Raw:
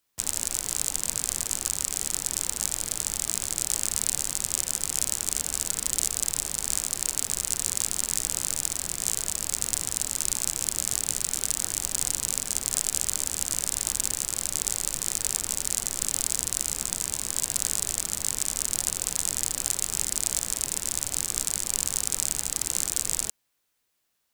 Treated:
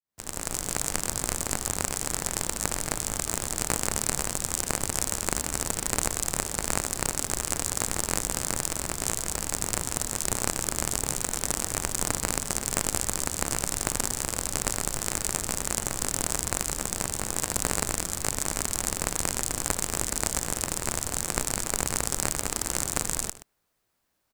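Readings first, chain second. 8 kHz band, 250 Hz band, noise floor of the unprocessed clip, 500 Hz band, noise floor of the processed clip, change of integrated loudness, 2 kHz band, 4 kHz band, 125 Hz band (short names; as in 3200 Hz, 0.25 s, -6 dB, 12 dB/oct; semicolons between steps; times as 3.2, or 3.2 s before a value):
-2.5 dB, +8.5 dB, -46 dBFS, +9.0 dB, -45 dBFS, -1.5 dB, +6.0 dB, -1.5 dB, +7.5 dB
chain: opening faded in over 0.61 s; echo 0.125 s -16.5 dB; in parallel at -5 dB: sample-rate reducer 3700 Hz, jitter 0%; on the sum: low shelf 210 Hz +4 dB; gain -2.5 dB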